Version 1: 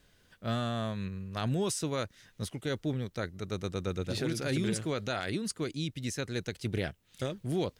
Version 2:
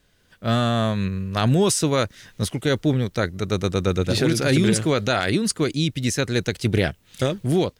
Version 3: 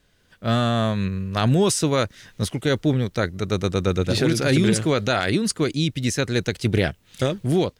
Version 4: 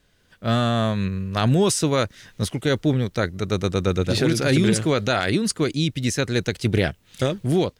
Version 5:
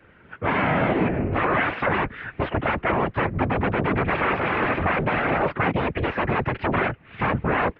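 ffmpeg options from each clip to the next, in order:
ffmpeg -i in.wav -af "dynaudnorm=framelen=270:gausssize=3:maxgain=11dB,volume=1.5dB" out.wav
ffmpeg -i in.wav -af "highshelf=frequency=9600:gain=-3.5" out.wav
ffmpeg -i in.wav -af anull out.wav
ffmpeg -i in.wav -af "aeval=exprs='0.355*sin(PI/2*7.94*val(0)/0.355)':channel_layout=same,afftfilt=real='hypot(re,im)*cos(2*PI*random(0))':imag='hypot(re,im)*sin(2*PI*random(1))':win_size=512:overlap=0.75,highpass=frequency=170:width_type=q:width=0.5412,highpass=frequency=170:width_type=q:width=1.307,lowpass=frequency=2500:width_type=q:width=0.5176,lowpass=frequency=2500:width_type=q:width=0.7071,lowpass=frequency=2500:width_type=q:width=1.932,afreqshift=-90,volume=-2dB" out.wav

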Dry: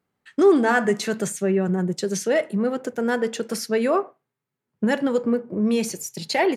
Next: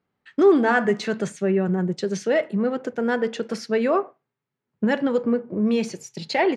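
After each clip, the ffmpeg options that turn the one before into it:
ffmpeg -i in.wav -af "lowpass=4400" out.wav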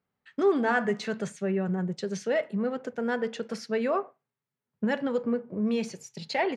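ffmpeg -i in.wav -af "equalizer=frequency=330:width_type=o:width=0.29:gain=-8.5,volume=-5.5dB" out.wav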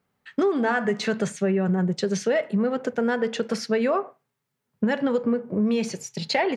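ffmpeg -i in.wav -af "acompressor=threshold=-28dB:ratio=6,volume=9dB" out.wav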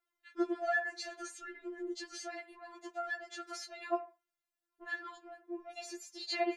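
ffmpeg -i in.wav -af "afftfilt=real='re*4*eq(mod(b,16),0)':imag='im*4*eq(mod(b,16),0)':win_size=2048:overlap=0.75,volume=-7.5dB" out.wav

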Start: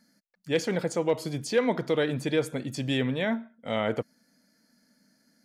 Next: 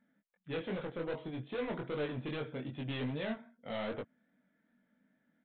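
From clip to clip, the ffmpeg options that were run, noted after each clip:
ffmpeg -i in.wav -af "aresample=8000,volume=27dB,asoftclip=hard,volume=-27dB,aresample=44100,flanger=delay=20:depth=4.4:speed=2.5,volume=-4dB" out.wav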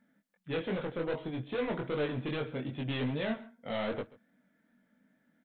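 ffmpeg -i in.wav -af "aecho=1:1:135:0.0891,volume=4dB" out.wav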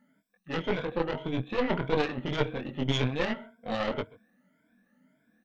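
ffmpeg -i in.wav -af "afftfilt=real='re*pow(10,16/40*sin(2*PI*(1.7*log(max(b,1)*sr/1024/100)/log(2)-(1.8)*(pts-256)/sr)))':imag='im*pow(10,16/40*sin(2*PI*(1.7*log(max(b,1)*sr/1024/100)/log(2)-(1.8)*(pts-256)/sr)))':win_size=1024:overlap=0.75,aeval=exprs='0.1*(cos(1*acos(clip(val(0)/0.1,-1,1)))-cos(1*PI/2))+0.0447*(cos(2*acos(clip(val(0)/0.1,-1,1)))-cos(2*PI/2))+0.0112*(cos(3*acos(clip(val(0)/0.1,-1,1)))-cos(3*PI/2))':channel_layout=same,volume=4dB" out.wav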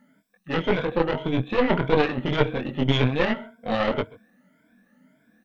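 ffmpeg -i in.wav -filter_complex "[0:a]acrossover=split=4100[link_01][link_02];[link_02]acompressor=threshold=-55dB:ratio=4:attack=1:release=60[link_03];[link_01][link_03]amix=inputs=2:normalize=0,volume=7dB" out.wav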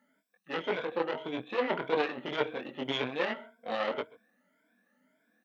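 ffmpeg -i in.wav -af "highpass=350,volume=-7dB" out.wav

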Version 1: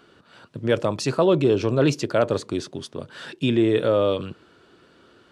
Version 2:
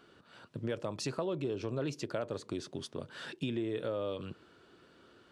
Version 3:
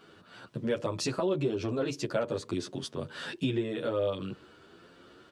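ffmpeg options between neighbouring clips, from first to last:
ffmpeg -i in.wav -af "acompressor=threshold=-27dB:ratio=4,volume=-6.5dB" out.wav
ffmpeg -i in.wav -filter_complex "[0:a]asplit=2[link_01][link_02];[link_02]adelay=10.1,afreqshift=1.3[link_03];[link_01][link_03]amix=inputs=2:normalize=1,volume=8.5dB" out.wav

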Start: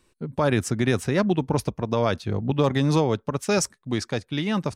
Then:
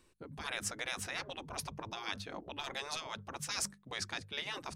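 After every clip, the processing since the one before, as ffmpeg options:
ffmpeg -i in.wav -af "bandreject=frequency=50:width_type=h:width=6,bandreject=frequency=100:width_type=h:width=6,bandreject=frequency=150:width_type=h:width=6,bandreject=frequency=200:width_type=h:width=6,afftfilt=real='re*lt(hypot(re,im),0.126)':imag='im*lt(hypot(re,im),0.126)':win_size=1024:overlap=0.75,areverse,acompressor=mode=upward:threshold=-47dB:ratio=2.5,areverse,volume=-5dB" out.wav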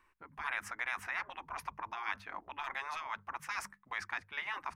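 ffmpeg -i in.wav -af "equalizer=frequency=125:width_type=o:width=1:gain=-10,equalizer=frequency=250:width_type=o:width=1:gain=-4,equalizer=frequency=500:width_type=o:width=1:gain=-9,equalizer=frequency=1000:width_type=o:width=1:gain=11,equalizer=frequency=2000:width_type=o:width=1:gain=10,equalizer=frequency=4000:width_type=o:width=1:gain=-9,equalizer=frequency=8000:width_type=o:width=1:gain=-9,volume=-4dB" out.wav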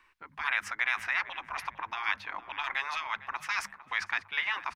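ffmpeg -i in.wav -filter_complex "[0:a]acrossover=split=150|4300[link_01][link_02][link_03];[link_02]crystalizer=i=8.5:c=0[link_04];[link_01][link_04][link_03]amix=inputs=3:normalize=0,asplit=2[link_05][link_06];[link_06]adelay=454,lowpass=frequency=1700:poles=1,volume=-14dB,asplit=2[link_07][link_08];[link_08]adelay=454,lowpass=frequency=1700:poles=1,volume=0.49,asplit=2[link_09][link_10];[link_10]adelay=454,lowpass=frequency=1700:poles=1,volume=0.49,asplit=2[link_11][link_12];[link_12]adelay=454,lowpass=frequency=1700:poles=1,volume=0.49,asplit=2[link_13][link_14];[link_14]adelay=454,lowpass=frequency=1700:poles=1,volume=0.49[link_15];[link_05][link_07][link_09][link_11][link_13][link_15]amix=inputs=6:normalize=0" out.wav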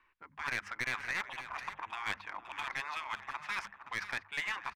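ffmpeg -i in.wav -af "aeval=exprs='clip(val(0),-1,0.0473)':channel_layout=same,adynamicsmooth=sensitivity=6:basefreq=3700,aecho=1:1:522:0.251,volume=-4.5dB" out.wav

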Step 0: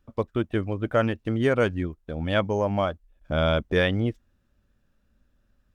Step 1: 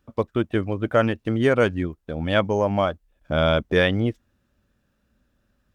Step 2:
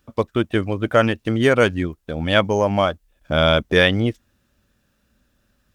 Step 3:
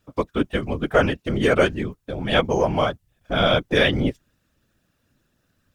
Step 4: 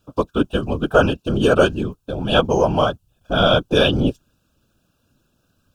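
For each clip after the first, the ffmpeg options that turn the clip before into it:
ffmpeg -i in.wav -af "highpass=frequency=82:poles=1,volume=3.5dB" out.wav
ffmpeg -i in.wav -af "highshelf=frequency=2300:gain=7.5,volume=2.5dB" out.wav
ffmpeg -i in.wav -af "afftfilt=real='hypot(re,im)*cos(2*PI*random(0))':imag='hypot(re,im)*sin(2*PI*random(1))':win_size=512:overlap=0.75,volume=3.5dB" out.wav
ffmpeg -i in.wav -af "asuperstop=centerf=2000:order=8:qfactor=2.4,volume=3.5dB" out.wav

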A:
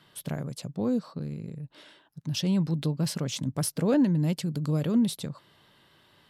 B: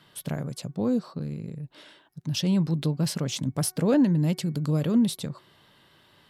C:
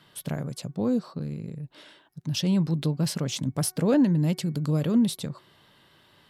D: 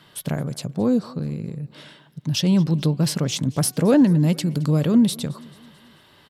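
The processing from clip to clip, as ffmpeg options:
ffmpeg -i in.wav -af "bandreject=frequency=370.1:width_type=h:width=4,bandreject=frequency=740.2:width_type=h:width=4,bandreject=frequency=1110.3:width_type=h:width=4,bandreject=frequency=1480.4:width_type=h:width=4,bandreject=frequency=1850.5:width_type=h:width=4,bandreject=frequency=2220.6:width_type=h:width=4,volume=2dB" out.wav
ffmpeg -i in.wav -af anull out.wav
ffmpeg -i in.wav -af "aecho=1:1:219|438|657|876:0.0708|0.0382|0.0206|0.0111,volume=5.5dB" out.wav

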